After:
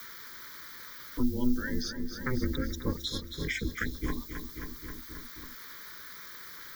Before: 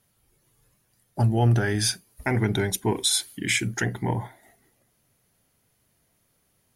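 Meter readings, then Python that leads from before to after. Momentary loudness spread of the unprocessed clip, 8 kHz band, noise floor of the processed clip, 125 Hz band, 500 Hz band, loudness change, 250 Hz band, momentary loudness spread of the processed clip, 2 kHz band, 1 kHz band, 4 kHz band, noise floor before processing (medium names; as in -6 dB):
9 LU, -17.0 dB, -46 dBFS, -14.0 dB, -10.0 dB, -11.5 dB, -3.5 dB, 12 LU, -7.0 dB, -12.0 dB, -10.0 dB, -69 dBFS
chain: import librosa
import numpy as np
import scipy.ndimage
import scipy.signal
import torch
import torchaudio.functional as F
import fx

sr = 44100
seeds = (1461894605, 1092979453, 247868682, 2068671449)

y = fx.bin_expand(x, sr, power=2.0)
y = fx.env_lowpass(y, sr, base_hz=2500.0, full_db=-20.5)
y = scipy.signal.sosfilt(scipy.signal.butter(2, 92.0, 'highpass', fs=sr, output='sos'), y)
y = fx.low_shelf(y, sr, hz=170.0, db=8.0)
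y = fx.notch(y, sr, hz=800.0, q=12.0)
y = fx.dmg_noise_colour(y, sr, seeds[0], colour='blue', level_db=-47.0)
y = y * np.sin(2.0 * np.pi * 130.0 * np.arange(len(y)) / sr)
y = fx.fixed_phaser(y, sr, hz=2700.0, stages=6)
y = fx.echo_feedback(y, sr, ms=267, feedback_pct=53, wet_db=-12.5)
y = fx.band_squash(y, sr, depth_pct=70)
y = y * librosa.db_to_amplitude(1.0)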